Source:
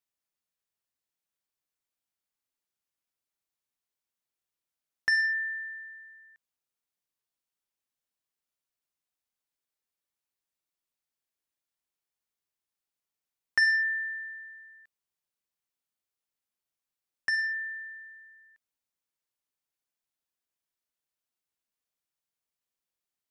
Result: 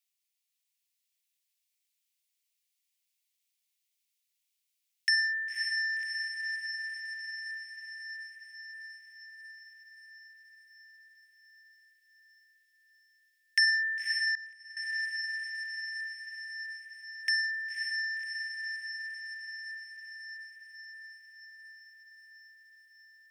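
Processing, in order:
Butterworth high-pass 2,100 Hz 36 dB per octave
on a send: feedback delay with all-pass diffusion 547 ms, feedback 69%, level −4 dB
0:14.35–0:14.77: on the sum: downward expander −28 dBFS
level +6.5 dB

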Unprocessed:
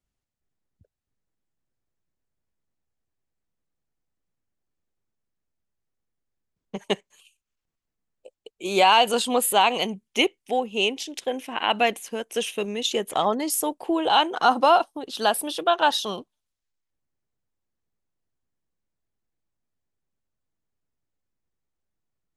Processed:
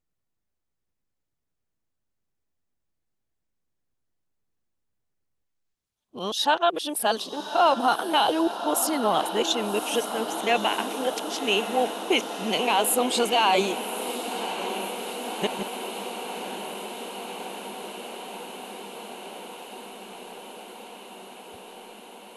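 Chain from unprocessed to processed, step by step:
played backwards from end to start
brickwall limiter −11.5 dBFS, peak gain reduction 5 dB
feedback delay with all-pass diffusion 1,133 ms, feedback 78%, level −10 dB

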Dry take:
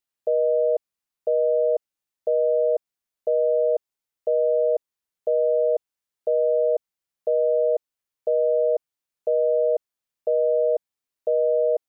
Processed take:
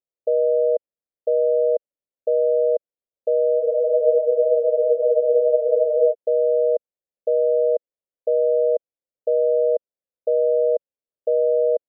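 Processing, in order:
low-pass with resonance 540 Hz, resonance Q 4
frozen spectrum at 0:03.62, 2.49 s
level −7 dB

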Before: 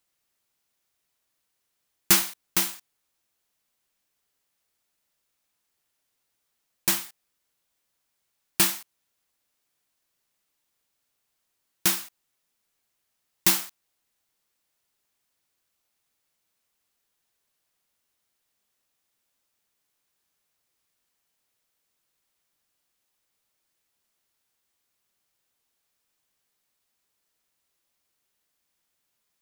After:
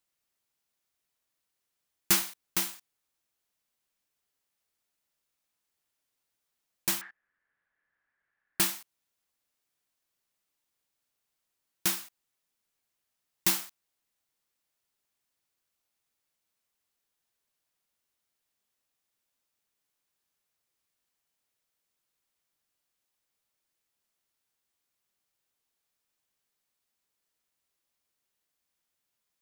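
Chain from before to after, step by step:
0:07.01–0:08.60: low-pass with resonance 1,700 Hz, resonance Q 9.2
level −5.5 dB

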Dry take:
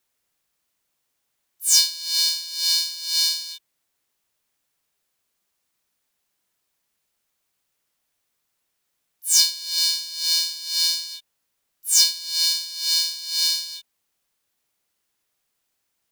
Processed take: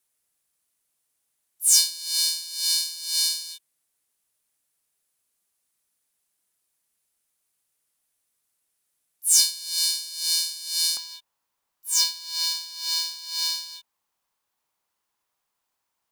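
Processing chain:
parametric band 10,000 Hz +11 dB 0.86 octaves, from 0:10.97 970 Hz
level −5.5 dB

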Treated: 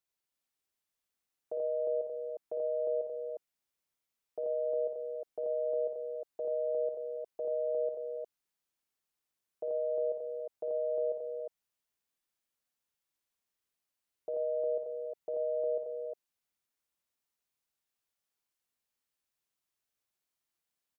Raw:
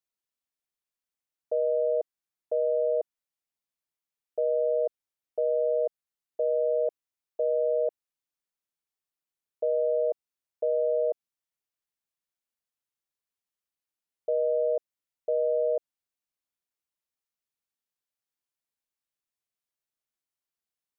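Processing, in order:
brickwall limiter −29.5 dBFS, peak gain reduction 10 dB
multi-tap delay 56/84/121/151/281/356 ms −7.5/−3.5/−16.5/−17.5/−15/−3.5 dB

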